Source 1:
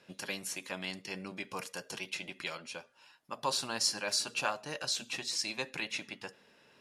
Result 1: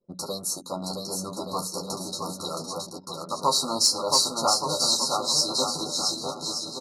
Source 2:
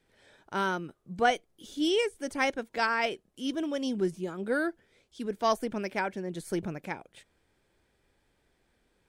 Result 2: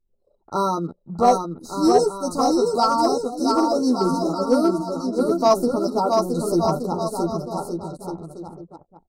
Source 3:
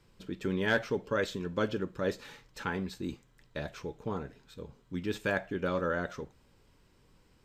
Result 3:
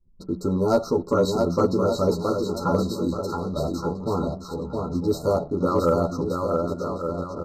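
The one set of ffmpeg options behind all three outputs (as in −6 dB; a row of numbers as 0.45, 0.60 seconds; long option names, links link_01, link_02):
-filter_complex "[0:a]bandreject=frequency=60:width_type=h:width=6,bandreject=frequency=120:width_type=h:width=6,bandreject=frequency=180:width_type=h:width=6,afftfilt=real='re*(1-between(b*sr/4096,1400,3800))':imag='im*(1-between(b*sr/4096,1400,3800))':win_size=4096:overlap=0.75,highshelf=frequency=5500:gain=2.5,asplit=2[link_01][link_02];[link_02]adelay=12,volume=-3dB[link_03];[link_01][link_03]amix=inputs=2:normalize=0,aecho=1:1:670|1172|1549|1832|2044:0.631|0.398|0.251|0.158|0.1,asplit=2[link_04][link_05];[link_05]asoftclip=type=hard:threshold=-20.5dB,volume=-7.5dB[link_06];[link_04][link_06]amix=inputs=2:normalize=0,anlmdn=0.01,equalizer=frequency=7200:width=0.66:gain=-2,volume=5.5dB"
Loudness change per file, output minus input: +10.5, +10.0, +10.0 LU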